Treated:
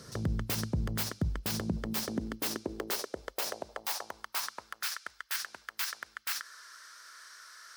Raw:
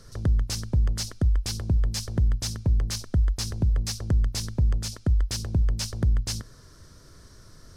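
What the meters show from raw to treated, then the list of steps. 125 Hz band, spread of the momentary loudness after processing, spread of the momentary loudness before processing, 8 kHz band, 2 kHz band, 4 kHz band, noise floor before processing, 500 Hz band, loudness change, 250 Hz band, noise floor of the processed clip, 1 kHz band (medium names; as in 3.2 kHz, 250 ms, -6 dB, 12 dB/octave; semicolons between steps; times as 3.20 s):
-14.0 dB, 16 LU, 3 LU, -4.5 dB, +5.0 dB, -4.0 dB, -51 dBFS, 0.0 dB, -8.5 dB, -4.0 dB, -66 dBFS, +4.5 dB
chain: tracing distortion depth 0.18 ms; peaking EQ 130 Hz -9.5 dB 0.99 oct; high-pass sweep 140 Hz -> 1.5 kHz, 1.38–4.92 s; peak limiter -25 dBFS, peak gain reduction 9 dB; trim +3.5 dB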